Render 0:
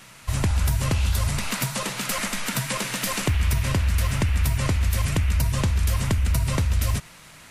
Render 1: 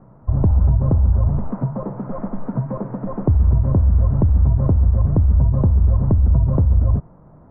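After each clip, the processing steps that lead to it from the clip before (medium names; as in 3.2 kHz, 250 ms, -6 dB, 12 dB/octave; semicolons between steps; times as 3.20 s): Bessel low-pass 590 Hz, order 6; trim +7.5 dB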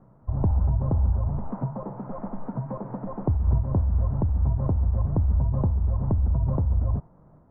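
dynamic bell 840 Hz, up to +6 dB, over -46 dBFS, Q 2.2; random flutter of the level, depth 50%; trim -5.5 dB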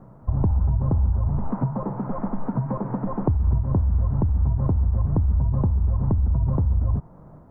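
dynamic bell 610 Hz, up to -5 dB, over -45 dBFS, Q 1.7; compression 2.5:1, threshold -28 dBFS, peak gain reduction 7.5 dB; trim +8 dB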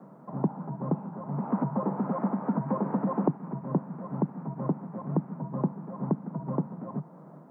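steep high-pass 150 Hz 72 dB/octave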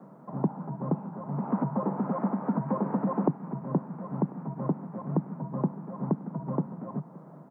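delay 1044 ms -23 dB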